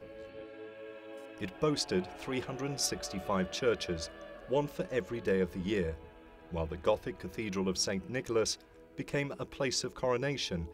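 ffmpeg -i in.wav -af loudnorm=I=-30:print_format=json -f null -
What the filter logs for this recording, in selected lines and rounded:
"input_i" : "-34.4",
"input_tp" : "-16.4",
"input_lra" : "1.1",
"input_thresh" : "-45.0",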